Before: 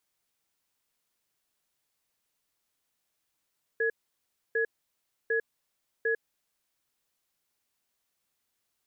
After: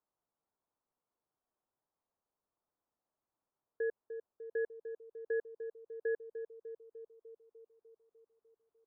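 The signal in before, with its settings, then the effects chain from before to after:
cadence 454 Hz, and 1680 Hz, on 0.10 s, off 0.65 s, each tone -27 dBFS 2.73 s
LPF 1100 Hz 24 dB/oct; low shelf 400 Hz -7 dB; on a send: narrowing echo 0.299 s, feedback 70%, band-pass 340 Hz, level -8 dB

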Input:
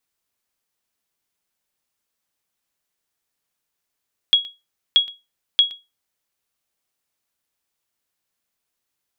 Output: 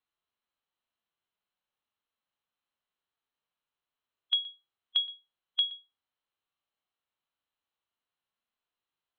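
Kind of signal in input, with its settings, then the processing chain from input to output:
sonar ping 3320 Hz, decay 0.23 s, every 0.63 s, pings 3, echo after 0.12 s, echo -20 dB -6 dBFS
harmonic-percussive split percussive -11 dB; compressor, threshold -21 dBFS; rippled Chebyshev low-pass 4200 Hz, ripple 6 dB

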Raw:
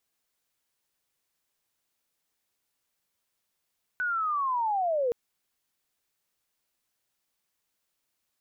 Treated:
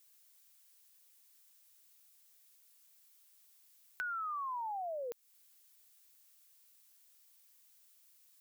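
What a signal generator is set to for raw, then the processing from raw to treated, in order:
chirp linear 1500 Hz -> 460 Hz -26 dBFS -> -23.5 dBFS 1.12 s
tilt +4 dB/oct; compressor 2.5:1, threshold -44 dBFS

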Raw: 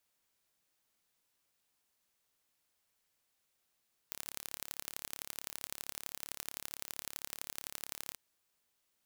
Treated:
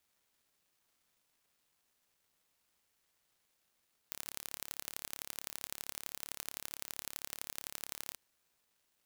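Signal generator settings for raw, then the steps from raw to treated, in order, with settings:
pulse train 35.5/s, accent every 3, -11.5 dBFS 4.04 s
crackle 470/s -67 dBFS

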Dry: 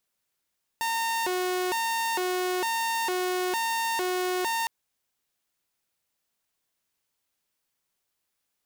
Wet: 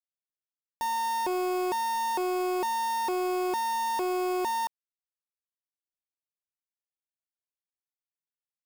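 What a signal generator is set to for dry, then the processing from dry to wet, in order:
siren hi-lo 365–914 Hz 1.1/s saw -23 dBFS 3.86 s
LPF 1300 Hz 24 dB/oct; companded quantiser 4-bit

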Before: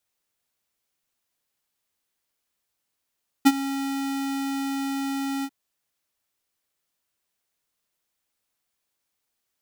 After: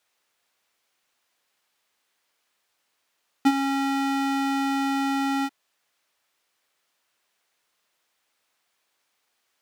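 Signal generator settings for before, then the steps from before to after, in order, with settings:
ADSR square 274 Hz, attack 18 ms, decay 45 ms, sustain -16 dB, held 1.99 s, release 54 ms -12 dBFS
overdrive pedal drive 18 dB, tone 3000 Hz, clips at -11.5 dBFS

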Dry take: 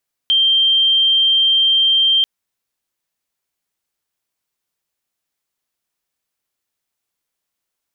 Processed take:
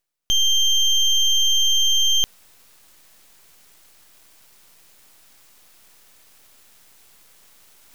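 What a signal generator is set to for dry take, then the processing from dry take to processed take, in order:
tone sine 3160 Hz -10.5 dBFS 1.94 s
reverse; upward compressor, threshold -24 dBFS; reverse; half-wave rectifier

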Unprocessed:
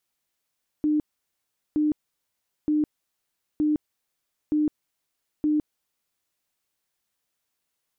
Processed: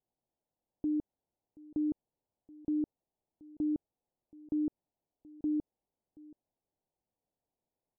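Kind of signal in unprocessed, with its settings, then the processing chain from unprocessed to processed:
tone bursts 302 Hz, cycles 48, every 0.92 s, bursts 6, -19 dBFS
limiter -27.5 dBFS; steep low-pass 890 Hz 48 dB/oct; echo 0.728 s -22 dB

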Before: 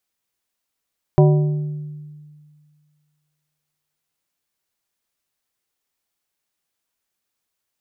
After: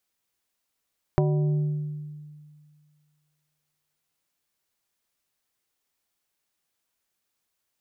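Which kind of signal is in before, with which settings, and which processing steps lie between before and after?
glass hit plate, length 3.72 s, lowest mode 150 Hz, modes 5, decay 2.00 s, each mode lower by 4.5 dB, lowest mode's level -8.5 dB
compressor 6:1, threshold -20 dBFS

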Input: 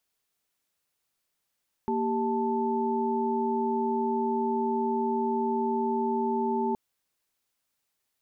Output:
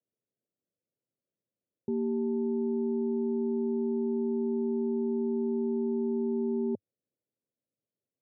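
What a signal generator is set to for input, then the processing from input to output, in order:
chord A#3/G4/A5 sine, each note -29 dBFS 4.87 s
elliptic band-pass 100–560 Hz, stop band 40 dB

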